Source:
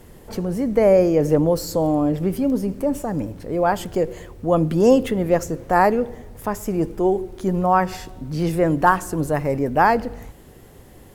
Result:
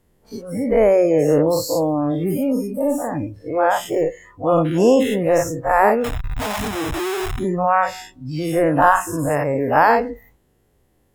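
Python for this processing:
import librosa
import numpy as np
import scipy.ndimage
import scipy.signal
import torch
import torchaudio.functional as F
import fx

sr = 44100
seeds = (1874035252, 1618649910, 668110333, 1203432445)

y = fx.spec_dilate(x, sr, span_ms=120)
y = fx.schmitt(y, sr, flips_db=-28.0, at=(6.04, 7.39))
y = fx.noise_reduce_blind(y, sr, reduce_db=19)
y = y * librosa.db_to_amplitude(-2.5)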